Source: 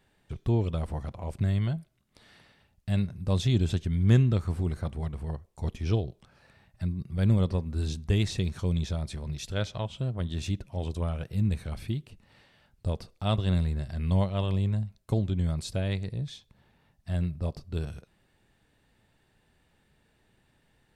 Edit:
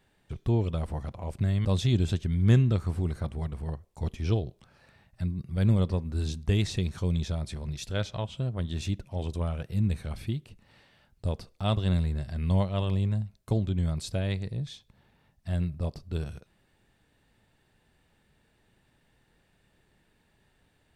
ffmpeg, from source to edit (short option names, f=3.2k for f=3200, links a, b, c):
-filter_complex "[0:a]asplit=2[a][b];[a]atrim=end=1.652[c];[b]atrim=start=3.258[d];[c][d]acrossfade=d=0.004:c1=hsin:c2=hsin"